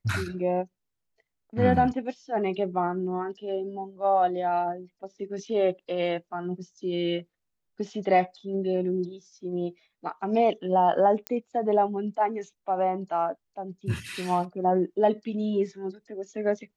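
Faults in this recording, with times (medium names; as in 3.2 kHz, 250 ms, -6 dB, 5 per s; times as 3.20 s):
11.27 s: pop -14 dBFS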